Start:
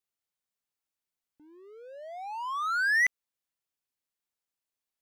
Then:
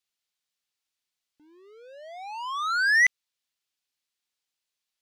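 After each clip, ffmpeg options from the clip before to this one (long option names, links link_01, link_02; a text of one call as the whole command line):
ffmpeg -i in.wav -af "equalizer=frequency=3900:width_type=o:width=2.4:gain=11.5,volume=-2dB" out.wav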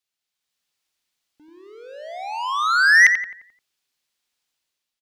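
ffmpeg -i in.wav -filter_complex "[0:a]dynaudnorm=framelen=130:gausssize=7:maxgain=7dB,asplit=2[link_01][link_02];[link_02]adelay=87,lowpass=frequency=2100:poles=1,volume=-5dB,asplit=2[link_03][link_04];[link_04]adelay=87,lowpass=frequency=2100:poles=1,volume=0.49,asplit=2[link_05][link_06];[link_06]adelay=87,lowpass=frequency=2100:poles=1,volume=0.49,asplit=2[link_07][link_08];[link_08]adelay=87,lowpass=frequency=2100:poles=1,volume=0.49,asplit=2[link_09][link_10];[link_10]adelay=87,lowpass=frequency=2100:poles=1,volume=0.49,asplit=2[link_11][link_12];[link_12]adelay=87,lowpass=frequency=2100:poles=1,volume=0.49[link_13];[link_03][link_05][link_07][link_09][link_11][link_13]amix=inputs=6:normalize=0[link_14];[link_01][link_14]amix=inputs=2:normalize=0" out.wav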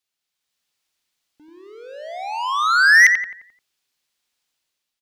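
ffmpeg -i in.wav -af "volume=8.5dB,asoftclip=hard,volume=-8.5dB,volume=2dB" out.wav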